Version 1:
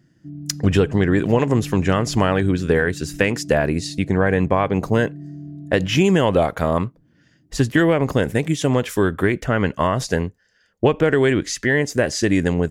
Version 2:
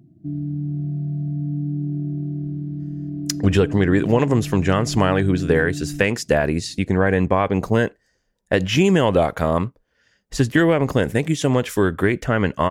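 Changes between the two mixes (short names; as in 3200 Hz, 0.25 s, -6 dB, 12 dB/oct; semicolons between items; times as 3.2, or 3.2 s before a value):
speech: entry +2.80 s; background +7.5 dB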